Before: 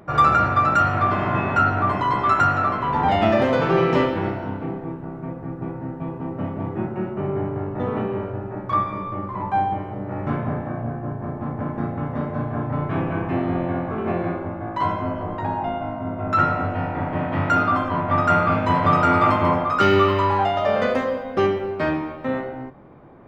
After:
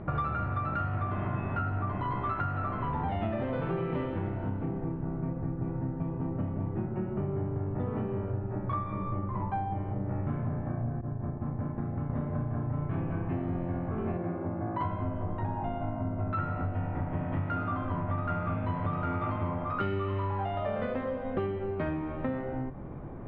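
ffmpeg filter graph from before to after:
-filter_complex "[0:a]asettb=1/sr,asplit=3[a][b][c];[a]atrim=end=11.014[d];[b]atrim=start=11.01:end=12.1,asetpts=PTS-STARTPTS,afade=t=in:d=0.004:c=qsin,afade=t=out:st=1.086:d=0.004:c=qsin,agate=range=-33dB:threshold=-25dB:ratio=3:release=100:detection=peak,acompressor=threshold=-34dB:ratio=2:attack=3.2:release=140:knee=1:detection=peak[e];[c]atrim=start=12.096[f];[d][e]acrossfade=d=0.004:c1=hsin:c2=qsin[g];[g][f]acrossfade=d=0.004:c1=qsin:c2=hsin,asettb=1/sr,asplit=3[h][i][j];[h]atrim=end=14.174[k];[i]atrim=start=14.17:end=14.81,asetpts=PTS-STARTPTS,afade=t=in:d=0.004:c=qsin,afade=t=out:st=0.636:d=0.004:c=qsin,highpass=130,lowpass=5.9k,highshelf=f=2.7k:g=-10[l];[j]atrim=start=14.806[m];[k][l]acrossfade=d=0.004:c1=hsin:c2=qsin[n];[n][m]acrossfade=d=0.004:c1=qsin:c2=hsin,lowpass=f=3.7k:w=0.5412,lowpass=f=3.7k:w=1.3066,aemphasis=mode=reproduction:type=bsi,acompressor=threshold=-30dB:ratio=6"

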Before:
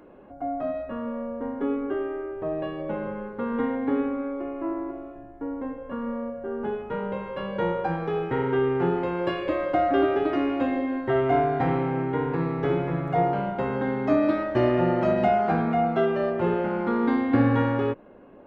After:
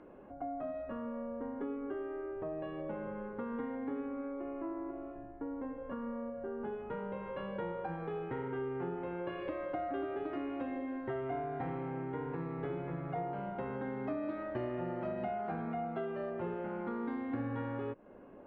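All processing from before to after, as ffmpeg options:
-filter_complex "[0:a]asettb=1/sr,asplit=3[a][b][c];[a]atrim=end=8.484[d];[b]atrim=start=8.48:end=9.4,asetpts=PTS-STARTPTS,afade=t=in:d=0.004:c=qsin,afade=t=out:st=0.916:d=0.004:c=qsin,lowpass=3.7k,bandreject=f=55.58:t=h:w=4,bandreject=f=111.16:t=h:w=4,bandreject=f=166.74:t=h:w=4,bandreject=f=222.32:t=h:w=4,bandreject=f=277.9:t=h:w=4,bandreject=f=333.48:t=h:w=4,bandreject=f=389.06:t=h:w=4,bandreject=f=444.64:t=h:w=4,bandreject=f=500.22:t=h:w=4,bandreject=f=555.8:t=h:w=4,bandreject=f=611.38:t=h:w=4,bandreject=f=666.96:t=h:w=4,bandreject=f=722.54:t=h:w=4,bandreject=f=778.12:t=h:w=4,bandreject=f=833.7:t=h:w=4,bandreject=f=889.28:t=h:w=4,bandreject=f=944.86:t=h:w=4,bandreject=f=1.00044k:t=h:w=4,bandreject=f=1.05602k:t=h:w=4,bandreject=f=1.1116k:t=h:w=4,bandreject=f=1.16718k:t=h:w=4,bandreject=f=1.22276k:t=h:w=4,bandreject=f=1.27834k:t=h:w=4,bandreject=f=1.33392k:t=h:w=4,bandreject=f=1.3895k:t=h:w=4,bandreject=f=1.44508k:t=h:w=4,bandreject=f=1.50066k:t=h:w=4,bandreject=f=1.55624k:t=h:w=4,bandreject=f=1.61182k:t=h:w=4,bandreject=f=1.6674k:t=h:w=4,bandreject=f=1.72298k:t=h:w=4,bandreject=f=1.77856k:t=h:w=4,bandreject=f=1.83414k:t=h:w=4,bandreject=f=1.88972k:t=h:w=4,bandreject=f=1.9453k:t=h:w=4[e];[c]atrim=start=9.396[f];[d][e]acrossfade=d=0.004:c1=hsin:c2=qsin[g];[g][f]acrossfade=d=0.004:c1=qsin:c2=hsin,lowpass=2.9k,acompressor=threshold=-34dB:ratio=3,volume=-4.5dB"

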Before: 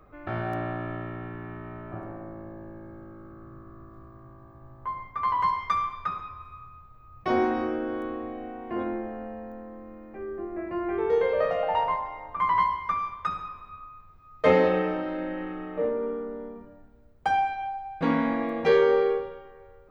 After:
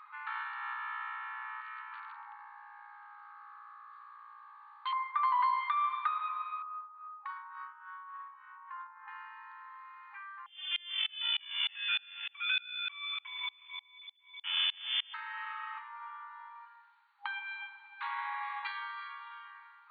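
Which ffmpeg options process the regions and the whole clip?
-filter_complex "[0:a]asettb=1/sr,asplit=3[a][b][c];[a]atrim=end=1.614[d];[b]atrim=start=1.61:end=4.93,asetpts=PTS-STARTPTS,afade=t=in:d=0.004:c=qsin,afade=t=out:st=3.316:d=0.004:c=qsin,volume=31dB,asoftclip=hard,volume=-31dB,acrossover=split=1100[e][f];[e]adelay=200[g];[g][f]amix=inputs=2:normalize=0,atrim=end_sample=146412[h];[c]atrim=start=4.926[i];[d][h]acrossfade=d=0.004:c1=hsin:c2=qsin[j];[j][i]acrossfade=d=0.004:c1=qsin:c2=hsin,asettb=1/sr,asplit=3[k][l][m];[k]atrim=end=6.624[n];[l]atrim=start=6.62:end=9.08,asetpts=PTS-STARTPTS,afade=t=in:d=0.004:c=qsin,afade=t=out:st=2.456:d=0.004:c=qsin,highshelf=f=1.9k:t=q:w=1.5:g=-11,acompressor=threshold=-38dB:ratio=5:attack=3.2:release=140:knee=1:detection=peak,acrossover=split=880[o][p];[o]aeval=exprs='val(0)*(1-0.7/2+0.7/2*cos(2*PI*3.5*n/s))':c=same[q];[p]aeval=exprs='val(0)*(1-0.7/2-0.7/2*cos(2*PI*3.5*n/s))':c=same[r];[q][r]amix=inputs=2:normalize=0[s];[m]atrim=start=9.076[t];[n][s]acrossfade=d=0.004:c1=hsin:c2=qsin[u];[u][t]acrossfade=d=0.004:c1=qsin:c2=hsin,asettb=1/sr,asplit=3[v][w][x];[v]atrim=end=10.464[y];[w]atrim=start=10.46:end=15.14,asetpts=PTS-STARTPTS,afade=t=in:d=0.004:c=qsin,afade=t=out:st=4.676:d=0.004:c=qsin,aeval=exprs='max(val(0),0)':c=same,lowpass=f=3k:t=q:w=0.5098,lowpass=f=3k:t=q:w=0.6013,lowpass=f=3k:t=q:w=0.9,lowpass=f=3k:t=q:w=2.563,afreqshift=-3500,aeval=exprs='val(0)*pow(10,-31*if(lt(mod(-3.3*n/s,1),2*abs(-3.3)/1000),1-mod(-3.3*n/s,1)/(2*abs(-3.3)/1000),(mod(-3.3*n/s,1)-2*abs(-3.3)/1000)/(1-2*abs(-3.3)/1000))/20)':c=same[z];[x]atrim=start=15.136[aa];[y][z]acrossfade=d=0.004:c1=hsin:c2=qsin[ab];[ab][aa]acrossfade=d=0.004:c1=qsin:c2=hsin,acompressor=threshold=-42dB:ratio=1.5,alimiter=level_in=4.5dB:limit=-24dB:level=0:latency=1:release=260,volume=-4.5dB,afftfilt=real='re*between(b*sr/4096,810,4600)':imag='im*between(b*sr/4096,810,4600)':win_size=4096:overlap=0.75,volume=7.5dB"

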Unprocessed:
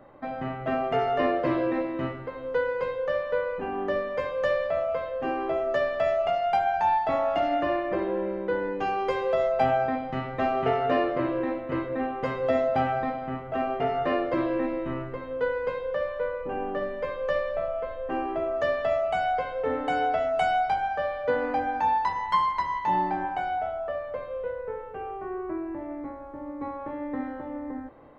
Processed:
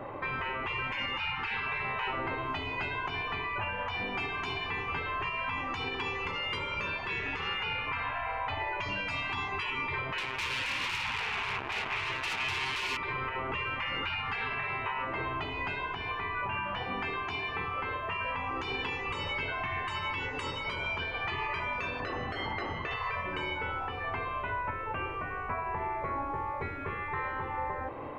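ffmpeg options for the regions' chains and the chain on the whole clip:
-filter_complex "[0:a]asettb=1/sr,asplit=3[a][b][c];[a]atrim=end=10.184[d];[b]atrim=start=10.18:end=12.97,asetpts=PTS-STARTPTS,afade=t=in:d=0.004:c=qsin,afade=t=out:st=2.786:d=0.004:c=qsin,acompressor=threshold=-25dB:ratio=4:attack=3.2:release=140:knee=1:detection=peak,acrusher=bits=4:mix=0:aa=0.5[e];[c]atrim=start=12.966[f];[d][e]acrossfade=d=0.004:c1=hsin:c2=qsin[g];[g][f]acrossfade=d=0.004:c1=qsin:c2=hsin,asettb=1/sr,asplit=3[h][i][j];[h]atrim=end=22.004[k];[i]atrim=start=22:end=22.91,asetpts=PTS-STARTPTS,afade=t=in:d=0.004:c=qsin,afade=t=out:st=0.906:d=0.004:c=qsin,lowpass=f=2.1k:p=1,equalizer=f=180:t=o:w=2:g=11[l];[j]atrim=start=22.906[m];[k][l]acrossfade=d=0.004:c1=hsin:c2=qsin[n];[n][m]acrossfade=d=0.004:c1=qsin:c2=hsin,afftfilt=real='re*lt(hypot(re,im),0.0501)':imag='im*lt(hypot(re,im),0.0501)':win_size=1024:overlap=0.75,equalizer=f=100:t=o:w=0.67:g=10,equalizer=f=400:t=o:w=0.67:g=6,equalizer=f=1k:t=o:w=0.67:g=9,equalizer=f=2.5k:t=o:w=0.67:g=12,alimiter=level_in=6.5dB:limit=-24dB:level=0:latency=1:release=165,volume=-6.5dB,volume=6dB"

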